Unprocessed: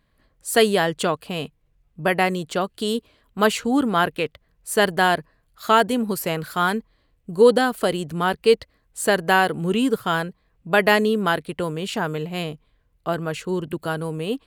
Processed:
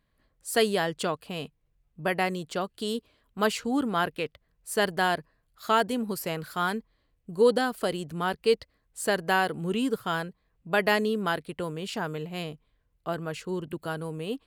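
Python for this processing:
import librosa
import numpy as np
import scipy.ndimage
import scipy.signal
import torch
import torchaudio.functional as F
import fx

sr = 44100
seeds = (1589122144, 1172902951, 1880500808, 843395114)

y = fx.dynamic_eq(x, sr, hz=5000.0, q=4.2, threshold_db=-48.0, ratio=4.0, max_db=5)
y = y * librosa.db_to_amplitude(-7.0)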